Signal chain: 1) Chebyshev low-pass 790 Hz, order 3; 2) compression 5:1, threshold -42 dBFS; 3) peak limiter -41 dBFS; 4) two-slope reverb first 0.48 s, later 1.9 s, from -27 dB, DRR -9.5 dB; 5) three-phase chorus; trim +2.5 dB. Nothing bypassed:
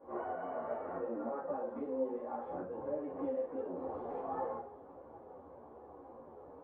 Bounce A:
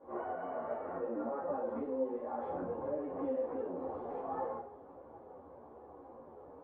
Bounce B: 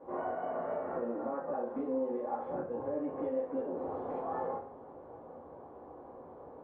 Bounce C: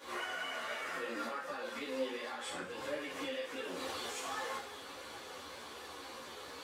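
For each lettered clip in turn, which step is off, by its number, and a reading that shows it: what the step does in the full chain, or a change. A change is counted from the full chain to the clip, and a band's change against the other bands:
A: 2, momentary loudness spread change +1 LU; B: 5, crest factor change -2.0 dB; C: 1, 2 kHz band +20.0 dB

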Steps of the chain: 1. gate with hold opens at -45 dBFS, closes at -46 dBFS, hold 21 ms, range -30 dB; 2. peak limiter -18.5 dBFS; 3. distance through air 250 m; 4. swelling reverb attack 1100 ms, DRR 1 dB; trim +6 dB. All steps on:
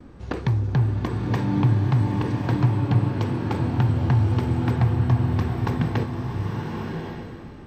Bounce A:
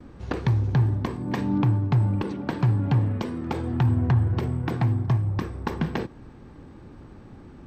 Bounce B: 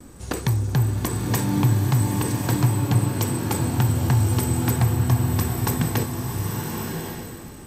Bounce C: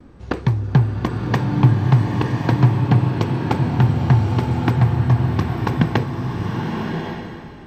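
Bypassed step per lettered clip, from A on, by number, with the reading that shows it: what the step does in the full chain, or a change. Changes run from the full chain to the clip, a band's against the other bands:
4, momentary loudness spread change -2 LU; 3, 4 kHz band +6.5 dB; 2, crest factor change +2.0 dB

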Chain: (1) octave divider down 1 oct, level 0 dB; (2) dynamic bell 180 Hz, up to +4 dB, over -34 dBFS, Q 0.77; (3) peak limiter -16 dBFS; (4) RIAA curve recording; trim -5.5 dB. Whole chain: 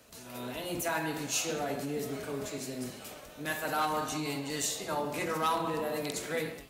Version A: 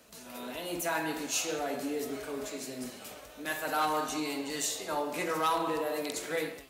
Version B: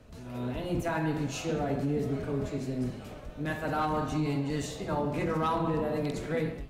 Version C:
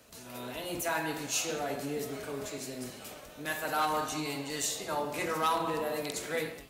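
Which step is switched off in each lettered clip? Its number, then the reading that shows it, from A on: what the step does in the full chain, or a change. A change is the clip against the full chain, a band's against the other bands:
1, 125 Hz band -8.0 dB; 4, 8 kHz band -12.0 dB; 2, 125 Hz band -3.0 dB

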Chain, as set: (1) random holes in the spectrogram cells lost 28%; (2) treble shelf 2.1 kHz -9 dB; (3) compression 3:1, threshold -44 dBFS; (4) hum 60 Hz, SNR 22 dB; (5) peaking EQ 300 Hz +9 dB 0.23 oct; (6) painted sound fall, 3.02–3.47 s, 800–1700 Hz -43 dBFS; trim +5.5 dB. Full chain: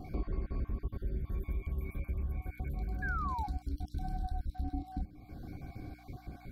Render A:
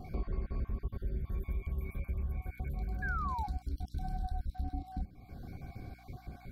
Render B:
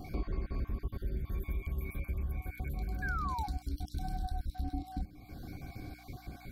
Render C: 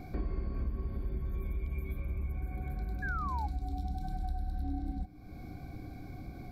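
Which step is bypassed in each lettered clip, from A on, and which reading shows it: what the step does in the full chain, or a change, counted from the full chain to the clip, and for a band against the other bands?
5, 250 Hz band -2.0 dB; 2, 4 kHz band +7.0 dB; 1, loudness change +1.0 LU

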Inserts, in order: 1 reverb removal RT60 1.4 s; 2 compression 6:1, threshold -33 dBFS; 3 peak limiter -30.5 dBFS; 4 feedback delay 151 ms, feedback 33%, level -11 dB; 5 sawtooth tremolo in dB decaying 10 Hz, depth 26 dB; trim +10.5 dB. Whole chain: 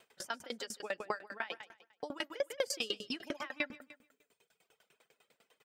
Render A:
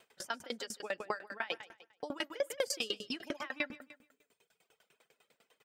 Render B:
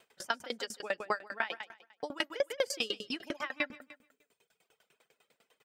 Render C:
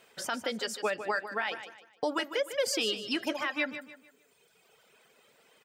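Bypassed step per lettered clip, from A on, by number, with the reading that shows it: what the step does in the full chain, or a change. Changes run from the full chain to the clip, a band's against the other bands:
2, mean gain reduction 3.5 dB; 3, mean gain reduction 1.5 dB; 5, momentary loudness spread change -5 LU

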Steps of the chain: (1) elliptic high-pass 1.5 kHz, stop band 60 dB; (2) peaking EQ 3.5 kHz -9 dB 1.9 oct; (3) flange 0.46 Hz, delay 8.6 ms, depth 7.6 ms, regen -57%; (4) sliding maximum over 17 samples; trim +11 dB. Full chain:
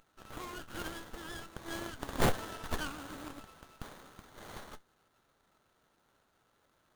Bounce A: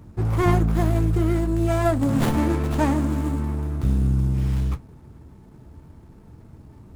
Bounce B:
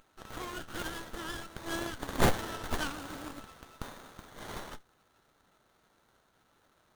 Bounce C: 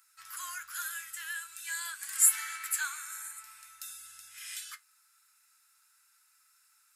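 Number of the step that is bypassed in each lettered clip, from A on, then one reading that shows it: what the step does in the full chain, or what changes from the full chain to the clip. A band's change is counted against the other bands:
1, 125 Hz band +14.0 dB; 2, loudness change +3.0 LU; 4, crest factor change +3.0 dB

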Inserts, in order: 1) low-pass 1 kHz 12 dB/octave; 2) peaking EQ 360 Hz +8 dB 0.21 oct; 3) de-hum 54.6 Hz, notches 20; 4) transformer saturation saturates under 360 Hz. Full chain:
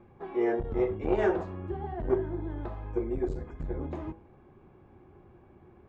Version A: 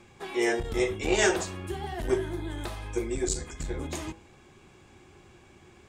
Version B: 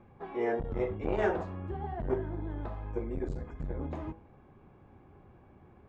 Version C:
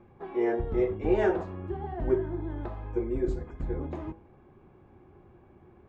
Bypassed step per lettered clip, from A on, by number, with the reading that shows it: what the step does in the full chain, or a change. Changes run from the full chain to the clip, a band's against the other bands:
1, 2 kHz band +10.5 dB; 2, 250 Hz band -4.0 dB; 4, loudness change +1.5 LU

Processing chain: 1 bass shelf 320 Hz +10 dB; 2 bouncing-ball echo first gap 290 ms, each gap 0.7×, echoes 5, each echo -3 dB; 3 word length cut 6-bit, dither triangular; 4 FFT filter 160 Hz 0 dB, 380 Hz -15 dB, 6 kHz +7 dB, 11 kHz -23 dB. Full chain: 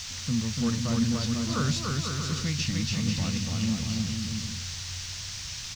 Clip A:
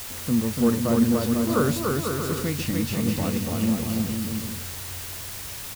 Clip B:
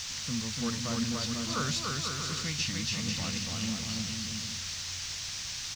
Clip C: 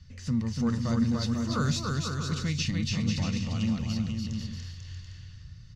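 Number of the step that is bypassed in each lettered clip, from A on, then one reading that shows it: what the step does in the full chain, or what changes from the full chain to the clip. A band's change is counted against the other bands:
4, 500 Hz band +12.0 dB; 1, 125 Hz band -8.0 dB; 3, distortion -10 dB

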